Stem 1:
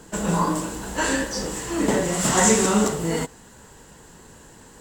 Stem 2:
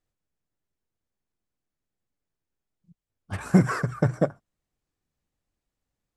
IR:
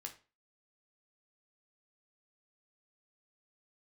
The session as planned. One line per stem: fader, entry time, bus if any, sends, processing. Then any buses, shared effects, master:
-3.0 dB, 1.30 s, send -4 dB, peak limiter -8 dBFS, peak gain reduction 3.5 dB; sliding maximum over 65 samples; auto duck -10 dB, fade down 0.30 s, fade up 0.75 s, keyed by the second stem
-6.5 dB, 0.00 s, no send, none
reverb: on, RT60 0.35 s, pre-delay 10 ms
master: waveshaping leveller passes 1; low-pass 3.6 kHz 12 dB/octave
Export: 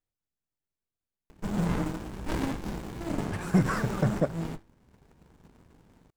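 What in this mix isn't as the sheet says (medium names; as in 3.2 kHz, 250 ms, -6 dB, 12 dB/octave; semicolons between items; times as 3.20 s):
stem 1 -3.0 dB -> -9.5 dB; master: missing low-pass 3.6 kHz 12 dB/octave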